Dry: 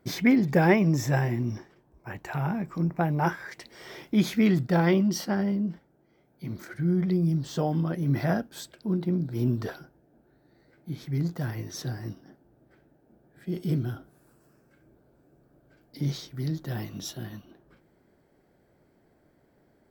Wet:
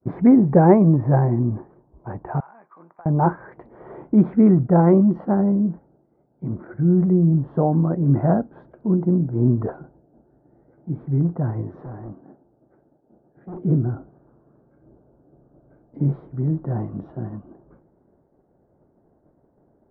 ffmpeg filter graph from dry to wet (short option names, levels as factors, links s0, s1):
-filter_complex "[0:a]asettb=1/sr,asplit=3[s0][s1][s2];[s0]atrim=end=2.404[s3];[s1]atrim=start=2.4:end=3.06,asetpts=PTS-STARTPTS,afade=t=in:d=0.004:c=qsin,afade=t=out:st=0.656:d=0.004:c=qsin,highpass=1400,acompressor=threshold=0.00501:ratio=5:attack=3.2:release=140:knee=1:detection=peak[s4];[s2]atrim=start=3.056[s5];[s3][s4]acrossfade=d=0.004:c1=hsin:c2=qsin[s6];[s6][s5]acrossfade=d=0.004:c1=qsin:c2=hsin,asettb=1/sr,asplit=3[s7][s8][s9];[s7]atrim=end=11.814[s10];[s8]atrim=start=11.81:end=13.62,asetpts=PTS-STARTPTS,afade=t=in:d=0.004:c=qsin,afade=t=out:st=1.806:d=0.004:c=qsin,lowshelf=f=140:g=-10,asoftclip=type=hard:threshold=0.0106[s11];[s9]atrim=start=13.616[s12];[s10][s11]acrossfade=d=0.004:c1=hsin:c2=qsin[s13];[s13][s12]acrossfade=d=0.004:c1=qsin:c2=hsin,lowpass=f=1100:w=0.5412,lowpass=f=1100:w=1.3066,agate=range=0.0224:threshold=0.00112:ratio=3:detection=peak,volume=2.51"